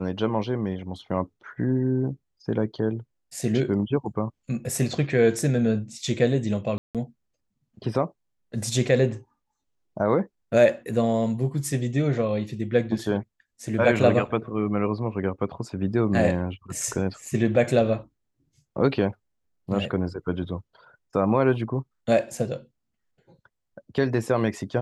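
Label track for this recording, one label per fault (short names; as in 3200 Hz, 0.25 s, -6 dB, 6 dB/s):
6.780000	6.950000	gap 0.167 s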